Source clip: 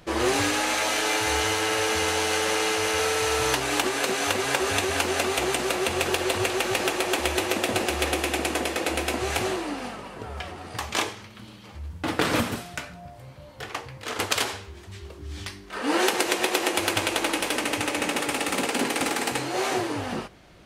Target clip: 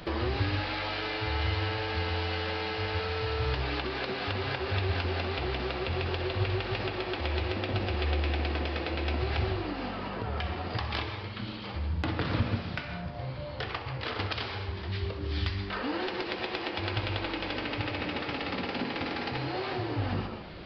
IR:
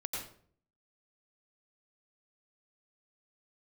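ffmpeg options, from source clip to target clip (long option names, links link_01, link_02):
-filter_complex "[0:a]bandreject=frequency=70.44:width_type=h:width=4,bandreject=frequency=140.88:width_type=h:width=4,bandreject=frequency=211.32:width_type=h:width=4,bandreject=frequency=281.76:width_type=h:width=4,bandreject=frequency=352.2:width_type=h:width=4,bandreject=frequency=422.64:width_type=h:width=4,bandreject=frequency=493.08:width_type=h:width=4,bandreject=frequency=563.52:width_type=h:width=4,bandreject=frequency=633.96:width_type=h:width=4,bandreject=frequency=704.4:width_type=h:width=4,bandreject=frequency=774.84:width_type=h:width=4,bandreject=frequency=845.28:width_type=h:width=4,bandreject=frequency=915.72:width_type=h:width=4,bandreject=frequency=986.16:width_type=h:width=4,bandreject=frequency=1056.6:width_type=h:width=4,bandreject=frequency=1127.04:width_type=h:width=4,bandreject=frequency=1197.48:width_type=h:width=4,bandreject=frequency=1267.92:width_type=h:width=4,bandreject=frequency=1338.36:width_type=h:width=4,bandreject=frequency=1408.8:width_type=h:width=4,bandreject=frequency=1479.24:width_type=h:width=4,bandreject=frequency=1549.68:width_type=h:width=4,bandreject=frequency=1620.12:width_type=h:width=4,bandreject=frequency=1690.56:width_type=h:width=4,bandreject=frequency=1761:width_type=h:width=4,bandreject=frequency=1831.44:width_type=h:width=4,bandreject=frequency=1901.88:width_type=h:width=4,bandreject=frequency=1972.32:width_type=h:width=4,bandreject=frequency=2042.76:width_type=h:width=4,bandreject=frequency=2113.2:width_type=h:width=4,bandreject=frequency=2183.64:width_type=h:width=4,bandreject=frequency=2254.08:width_type=h:width=4,bandreject=frequency=2324.52:width_type=h:width=4,bandreject=frequency=2394.96:width_type=h:width=4,bandreject=frequency=2465.4:width_type=h:width=4,bandreject=frequency=2535.84:width_type=h:width=4,bandreject=frequency=2606.28:width_type=h:width=4,bandreject=frequency=2676.72:width_type=h:width=4,bandreject=frequency=2747.16:width_type=h:width=4,aresample=11025,aresample=44100,asplit=2[link_01][link_02];[1:a]atrim=start_sample=2205,asetrate=74970,aresample=44100,adelay=63[link_03];[link_02][link_03]afir=irnorm=-1:irlink=0,volume=-7dB[link_04];[link_01][link_04]amix=inputs=2:normalize=0,acrossover=split=130[link_05][link_06];[link_06]acompressor=threshold=-41dB:ratio=5[link_07];[link_05][link_07]amix=inputs=2:normalize=0,volume=7.5dB"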